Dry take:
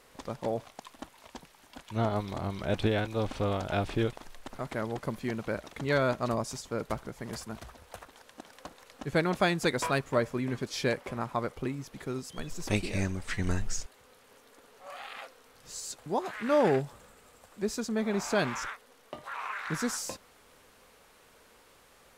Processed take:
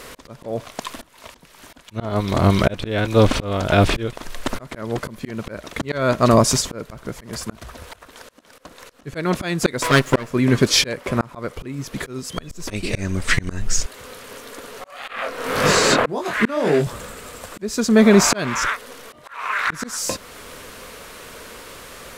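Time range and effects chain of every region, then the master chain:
9.83–10.28 minimum comb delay 7.9 ms + low shelf 140 Hz -7 dB
15.08–16.87 chorus 1.8 Hz, delay 19.5 ms, depth 6.4 ms + three-band squash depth 100%
whole clip: bell 810 Hz -8 dB 0.23 oct; auto swell 0.553 s; maximiser +22 dB; gain -1 dB

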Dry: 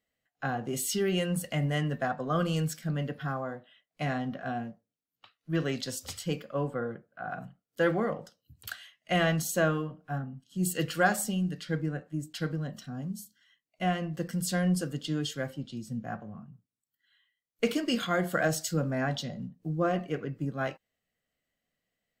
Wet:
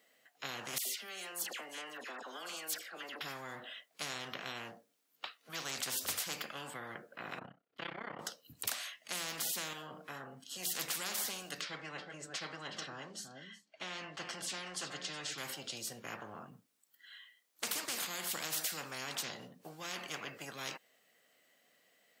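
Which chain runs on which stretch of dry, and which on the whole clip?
0.78–3.21 level quantiser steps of 21 dB + HPF 380 Hz 24 dB/oct + dispersion lows, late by 78 ms, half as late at 1800 Hz
7.39–8.19 AM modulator 32 Hz, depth 80% + air absorption 380 m
9.73–10.46 notch 2800 Hz, Q 14 + compressor 1.5:1, threshold -44 dBFS
11.61–15.38 air absorption 130 m + notch comb 240 Hz + echo 0.368 s -19.5 dB
whole clip: HPF 350 Hz 12 dB/oct; spectral compressor 10:1; gain -6 dB

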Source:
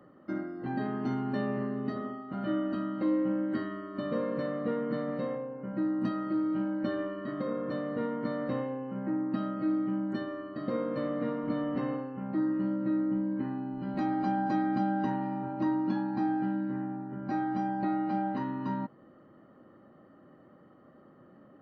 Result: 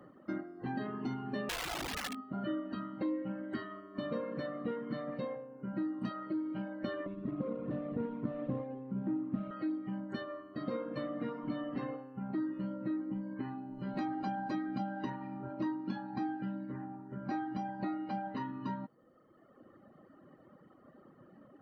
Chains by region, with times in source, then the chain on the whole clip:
1.49–2.3 comb 4 ms, depth 40% + wrapped overs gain 30 dB
7.06–9.51 median filter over 25 samples + LPF 1500 Hz + low shelf 250 Hz +9 dB
whole clip: reverb removal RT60 1.5 s; dynamic EQ 3400 Hz, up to +4 dB, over -56 dBFS, Q 0.78; compressor 2:1, threshold -38 dBFS; gain +1 dB

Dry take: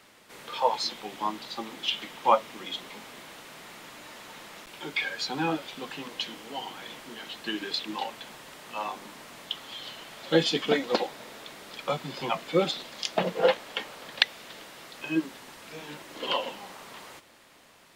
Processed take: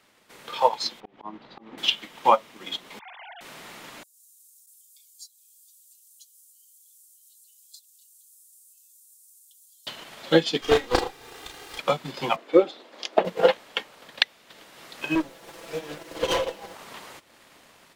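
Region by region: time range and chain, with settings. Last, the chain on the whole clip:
1–1.78 auto swell 0.185 s + tape spacing loss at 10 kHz 38 dB + mismatched tape noise reduction encoder only
2.99–3.41 sine-wave speech + notch 1300 Hz, Q 6.9
4.03–9.87 inverse Chebyshev high-pass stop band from 1500 Hz, stop band 80 dB + comb 5.4 ms, depth 56%
10.61–11.79 minimum comb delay 2.5 ms + doubler 34 ms -2.5 dB
12.36–13.25 HPF 310 Hz 24 dB/oct + tilt -3.5 dB/oct
15.15–16.75 minimum comb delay 6 ms + bell 480 Hz +9 dB 1.1 oct + overloaded stage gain 24 dB
whole clip: AGC gain up to 8 dB; transient shaper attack +5 dB, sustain -6 dB; gain -5.5 dB

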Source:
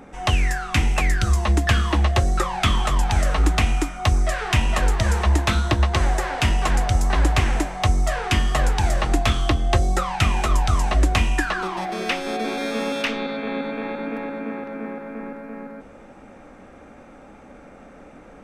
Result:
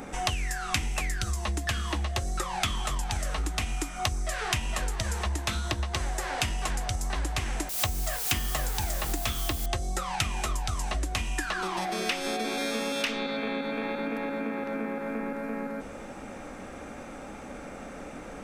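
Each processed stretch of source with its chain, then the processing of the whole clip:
7.69–9.66 gate -25 dBFS, range -15 dB + requantised 6-bit, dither triangular
whole clip: compressor 6:1, threshold -32 dBFS; high shelf 3800 Hz +10.5 dB; gain +3 dB

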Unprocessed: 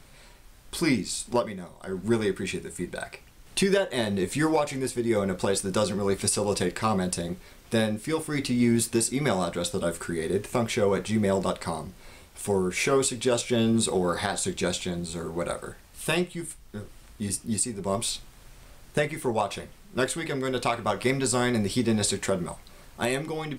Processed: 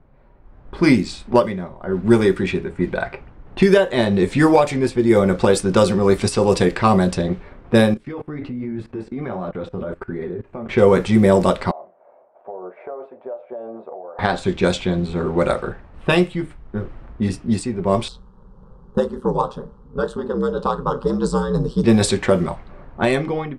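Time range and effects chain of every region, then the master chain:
7.94–10.69 high shelf 11000 Hz -8.5 dB + flange 1.3 Hz, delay 4.4 ms, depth 9.5 ms, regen -33% + level quantiser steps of 20 dB
11.71–14.19 ladder band-pass 690 Hz, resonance 70% + compressor, threshold -41 dBFS
18.08–21.84 bell 2100 Hz -14.5 dB 0.7 oct + ring modulator 63 Hz + fixed phaser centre 450 Hz, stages 8
whole clip: AGC gain up to 14 dB; high shelf 2700 Hz -7.5 dB; low-pass opened by the level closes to 1000 Hz, open at -10 dBFS

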